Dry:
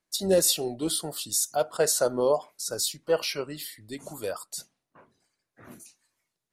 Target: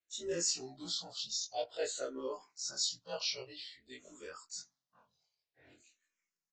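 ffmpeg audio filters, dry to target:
ffmpeg -i in.wav -filter_complex "[0:a]afftfilt=real='re':imag='-im':win_size=2048:overlap=0.75,equalizer=frequency=4600:width_type=o:width=2.7:gain=10.5,aresample=16000,aresample=44100,asplit=2[link_01][link_02];[link_02]afreqshift=-0.51[link_03];[link_01][link_03]amix=inputs=2:normalize=1,volume=-8.5dB" out.wav

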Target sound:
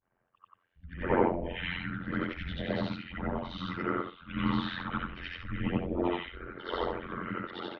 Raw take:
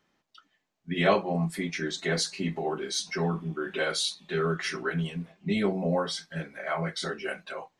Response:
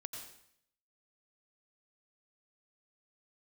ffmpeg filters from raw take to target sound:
-filter_complex "[0:a]afftfilt=real='re':imag='-im':win_size=8192:overlap=0.75,acrossover=split=270|2100[link_01][link_02][link_03];[link_02]adelay=80[link_04];[link_03]adelay=630[link_05];[link_01][link_04][link_05]amix=inputs=3:normalize=0,acrossover=split=200|1800[link_06][link_07][link_08];[link_08]asoftclip=type=hard:threshold=-34.5dB[link_09];[link_06][link_07][link_09]amix=inputs=3:normalize=0,tremolo=f=88:d=0.919,highpass=frequency=250:width_type=q:width=0.5412,highpass=frequency=250:width_type=q:width=1.307,lowpass=frequency=3400:width_type=q:width=0.5176,lowpass=frequency=3400:width_type=q:width=0.7071,lowpass=frequency=3400:width_type=q:width=1.932,afreqshift=-190,volume=8dB"

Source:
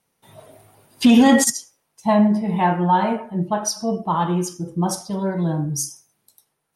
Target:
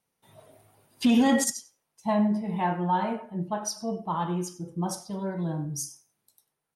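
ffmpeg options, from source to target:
ffmpeg -i in.wav -af "aecho=1:1:95:0.0944,volume=-8.5dB" out.wav

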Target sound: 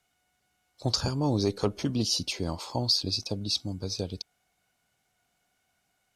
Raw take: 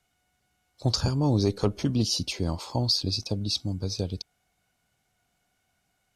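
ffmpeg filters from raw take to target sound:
ffmpeg -i in.wav -af "lowshelf=frequency=190:gain=-7" out.wav

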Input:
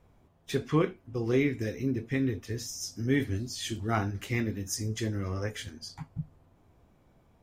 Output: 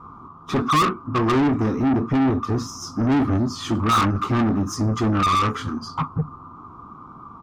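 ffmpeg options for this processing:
ffmpeg -i in.wav -filter_complex "[0:a]firequalizer=gain_entry='entry(270,0);entry(580,-22);entry(1200,12);entry(1700,-27);entry(4800,-24);entry(8300,-29)':delay=0.05:min_phase=1,asplit=2[link_01][link_02];[link_02]highpass=frequency=720:poles=1,volume=32dB,asoftclip=type=tanh:threshold=-16.5dB[link_03];[link_01][link_03]amix=inputs=2:normalize=0,lowpass=frequency=5400:poles=1,volume=-6dB,volume=5dB" out.wav

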